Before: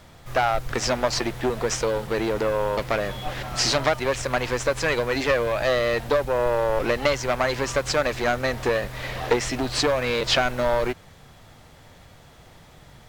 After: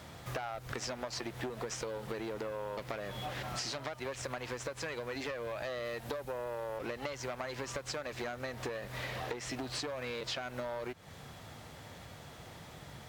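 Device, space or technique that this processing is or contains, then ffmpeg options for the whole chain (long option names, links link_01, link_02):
serial compression, leveller first: -filter_complex "[0:a]highpass=72,asettb=1/sr,asplit=3[link_01][link_02][link_03];[link_01]atrim=end=5.854[link_04];[link_02]atrim=start=5.85:end=6.78,asetpts=PTS-STARTPTS,afade=type=in:duration=0.004:curve=qsin,afade=type=out:start_time=0.926:duration=0.004:curve=qsin,equalizer=frequency=13000:width_type=o:width=1.2:gain=5.5[link_05];[link_03]atrim=start=6.776[link_06];[link_04][link_05]acrossfade=duration=0.004:curve1=hsin:curve2=qsin[link_07];[link_07][link_06]acrossfade=duration=0.004:curve1=qsin:curve2=hsin,acompressor=threshold=-27dB:ratio=2,acompressor=threshold=-38dB:ratio=4"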